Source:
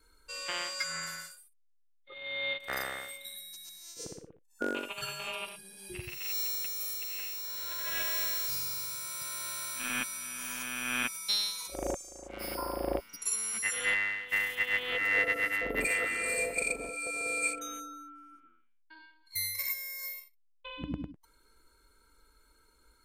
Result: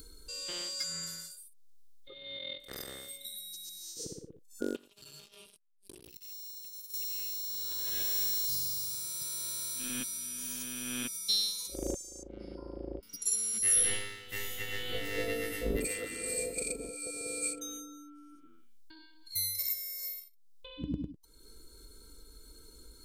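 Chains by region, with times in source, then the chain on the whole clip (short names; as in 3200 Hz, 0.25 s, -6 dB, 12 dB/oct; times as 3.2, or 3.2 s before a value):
2.37–2.89 ring modulator 21 Hz + flutter echo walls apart 11.3 m, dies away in 0.27 s
4.76–6.94 compressor 16:1, threshold -46 dBFS + core saturation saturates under 2600 Hz
12.23–13.03 compressor 2.5:1, threshold -35 dBFS + tape spacing loss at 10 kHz 36 dB + notch 1100 Hz
13.6–15.77 low shelf 110 Hz +11 dB + flutter echo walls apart 3 m, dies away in 0.51 s
whole clip: upward compressor, threshold -41 dBFS; band shelf 1300 Hz -14.5 dB 2.4 oct; gain +1.5 dB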